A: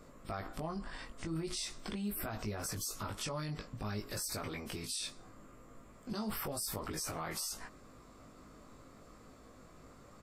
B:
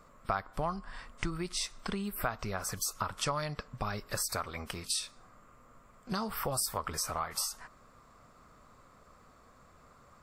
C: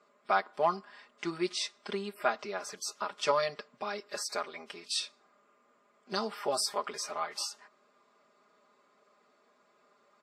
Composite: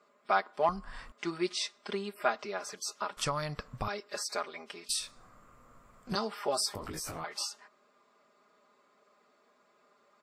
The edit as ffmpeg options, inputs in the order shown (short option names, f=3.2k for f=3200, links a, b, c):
-filter_complex "[1:a]asplit=3[a][b][c];[2:a]asplit=5[d][e][f][g][h];[d]atrim=end=0.692[i];[a]atrim=start=0.688:end=1.122[j];[e]atrim=start=1.118:end=3.172[k];[b]atrim=start=3.168:end=3.882[l];[f]atrim=start=3.878:end=4.892[m];[c]atrim=start=4.888:end=6.152[n];[g]atrim=start=6.148:end=6.752[o];[0:a]atrim=start=6.748:end=7.242[p];[h]atrim=start=7.238[q];[i][j]acrossfade=d=0.004:c1=hsin:c2=hsin[r];[r][k]acrossfade=d=0.004:c1=hsin:c2=hsin[s];[s][l]acrossfade=d=0.004:c1=hsin:c2=hsin[t];[t][m]acrossfade=d=0.004:c1=hsin:c2=hsin[u];[u][n]acrossfade=d=0.004:c1=hsin:c2=hsin[v];[v][o]acrossfade=d=0.004:c1=hsin:c2=hsin[w];[w][p]acrossfade=d=0.004:c1=hsin:c2=hsin[x];[x][q]acrossfade=d=0.004:c1=hsin:c2=hsin"